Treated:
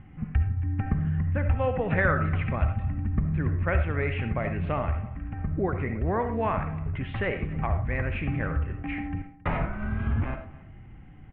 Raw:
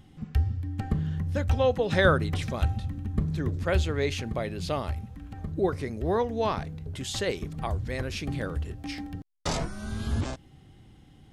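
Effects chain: steep low-pass 2.5 kHz 48 dB/octave; peaking EQ 430 Hz -7.5 dB 1.8 oct; compression 2:1, threshold -32 dBFS, peak gain reduction 8 dB; delay 271 ms -20.5 dB; on a send at -7 dB: reverberation RT60 0.40 s, pre-delay 30 ms; on the sum: trim +7 dB

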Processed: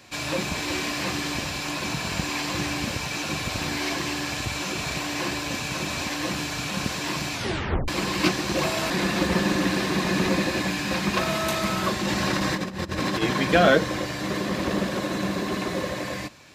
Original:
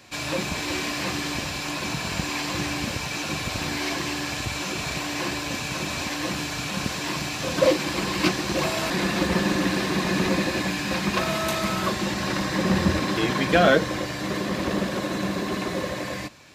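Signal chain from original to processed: 7.33 s: tape stop 0.55 s; 12.02–13.22 s: compressor with a negative ratio -26 dBFS, ratio -0.5

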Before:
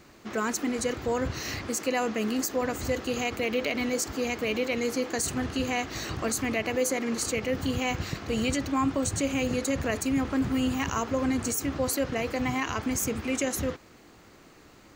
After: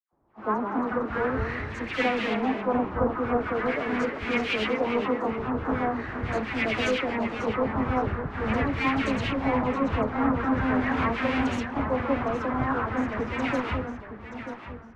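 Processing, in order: square wave that keeps the level; LFO low-pass saw up 0.43 Hz 850–2800 Hz; phase dispersion lows, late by 123 ms, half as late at 1.5 kHz; ever faster or slower copies 133 ms, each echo -1 st, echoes 2, each echo -6 dB; three bands expanded up and down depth 70%; trim -4 dB

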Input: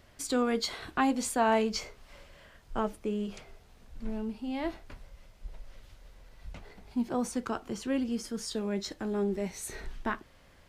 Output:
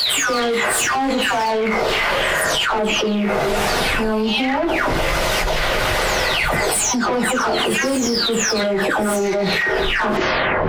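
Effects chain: delay that grows with frequency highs early, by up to 521 ms; treble shelf 12 kHz +8 dB; overdrive pedal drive 23 dB, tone 2.6 kHz, clips at -21.5 dBFS; reverberation, pre-delay 3 ms, DRR 4.5 dB; level flattener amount 100%; trim +4 dB

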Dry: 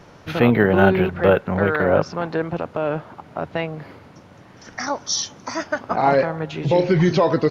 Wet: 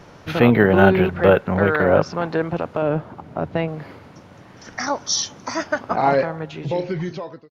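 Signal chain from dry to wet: fade out at the end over 1.77 s; 2.82–3.68 s: tilt shelf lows +4.5 dB, about 630 Hz; trim +1.5 dB

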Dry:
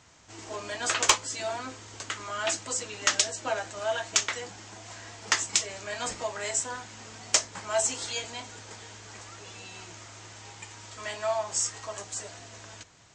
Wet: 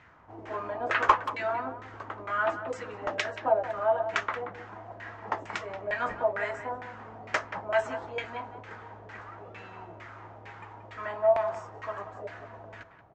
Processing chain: LFO low-pass saw down 2.2 Hz 560–2100 Hz; speakerphone echo 180 ms, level -11 dB

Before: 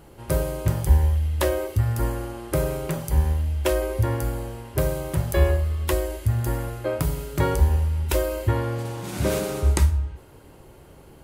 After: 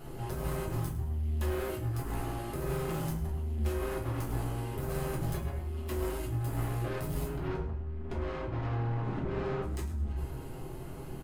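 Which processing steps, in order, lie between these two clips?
7.25–9.62 s: low-pass 2.3 kHz -> 1.2 kHz 12 dB/octave; compressor with a negative ratio -27 dBFS, ratio -1; saturation -32 dBFS, distortion -7 dB; feedback delay 105 ms, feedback 34%, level -14.5 dB; reverberation RT60 0.45 s, pre-delay 5 ms, DRR -4 dB; trim -6.5 dB

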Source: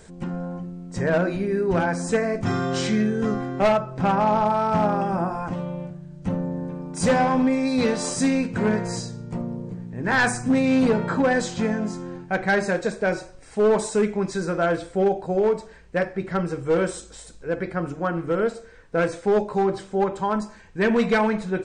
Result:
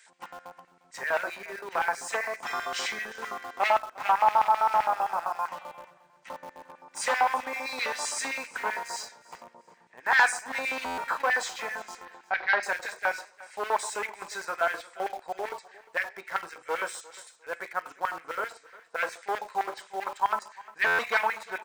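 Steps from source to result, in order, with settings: LFO high-pass square 7.7 Hz 920–2000 Hz; feedback comb 55 Hz, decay 0.27 s, harmonics odd, mix 30%; in parallel at -10 dB: word length cut 6-bit, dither none; 12.05–12.63 s: on the sum: steep low-pass 4.9 kHz 36 dB/octave; on a send: feedback delay 353 ms, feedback 23%, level -20.5 dB; on the sum: buffer glitch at 10.85/20.86 s, samples 512, times 10; trim -3.5 dB

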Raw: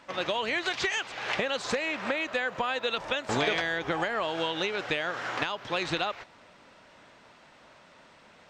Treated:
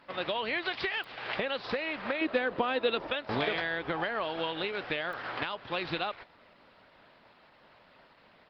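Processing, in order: 2.21–3.07 s: peaking EQ 320 Hz +12.5 dB 1.2 oct; resampled via 11.025 kHz; clicks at 1.04/5.13 s, -28 dBFS; trim -2.5 dB; Opus 20 kbps 48 kHz

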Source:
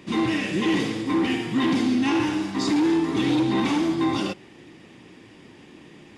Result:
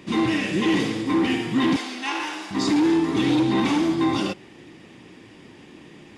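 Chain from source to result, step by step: 1.76–2.51 s: high-pass 680 Hz 12 dB/octave; trim +1.5 dB

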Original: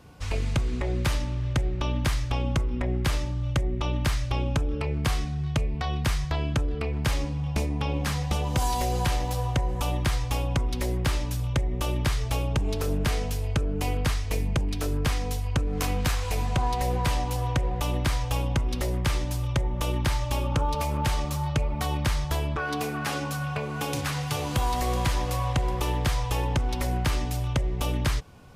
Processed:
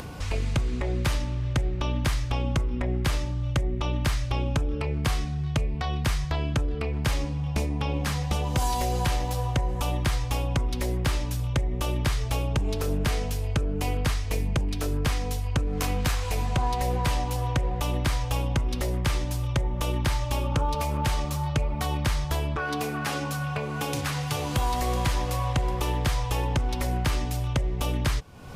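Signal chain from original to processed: upward compressor, threshold -27 dBFS

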